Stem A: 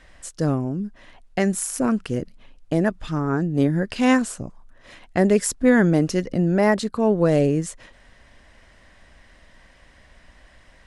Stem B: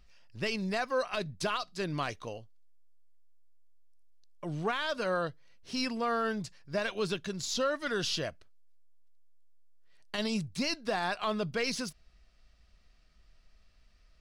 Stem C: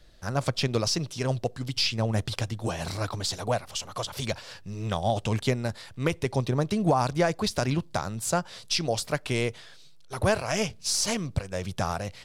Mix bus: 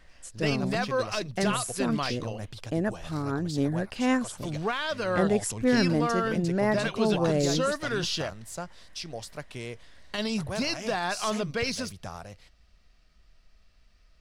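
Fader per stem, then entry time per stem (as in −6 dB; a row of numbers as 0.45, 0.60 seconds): −7.5, +2.5, −11.0 decibels; 0.00, 0.00, 0.25 seconds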